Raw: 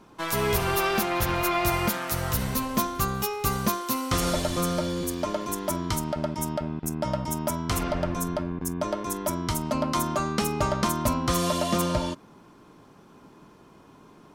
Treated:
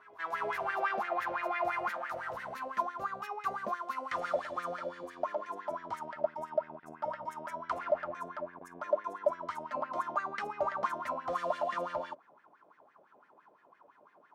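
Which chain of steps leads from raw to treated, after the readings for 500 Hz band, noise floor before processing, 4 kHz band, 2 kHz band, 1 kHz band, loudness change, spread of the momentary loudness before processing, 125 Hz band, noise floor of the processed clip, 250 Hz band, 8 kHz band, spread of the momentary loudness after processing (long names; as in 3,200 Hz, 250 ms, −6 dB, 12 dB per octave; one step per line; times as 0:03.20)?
−6.0 dB, −53 dBFS, −20.5 dB, −6.0 dB, −5.0 dB, −9.0 dB, 6 LU, −28.5 dB, −65 dBFS, −21.5 dB, below −25 dB, 8 LU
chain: backwards echo 392 ms −22.5 dB
LFO wah 5.9 Hz 570–1,900 Hz, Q 6.9
level +4 dB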